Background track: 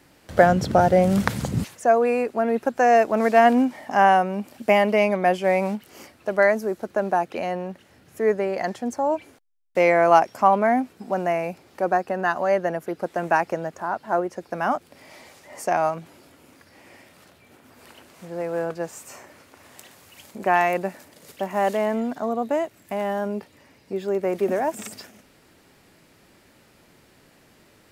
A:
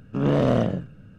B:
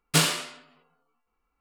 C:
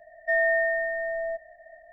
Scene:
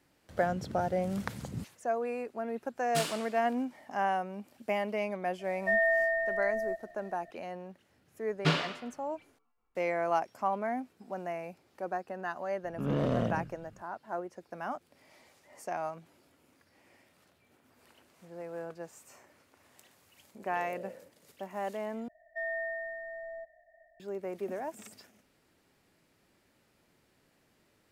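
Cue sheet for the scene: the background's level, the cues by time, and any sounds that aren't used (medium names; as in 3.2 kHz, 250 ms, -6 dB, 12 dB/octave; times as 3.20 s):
background track -14 dB
2.81 s: add B -13 dB
5.39 s: add C -3.5 dB
8.31 s: add B -3 dB + distance through air 240 m
12.64 s: add A -9.5 dB
20.29 s: add A -16 dB + vowel filter e
22.08 s: replace with C -12.5 dB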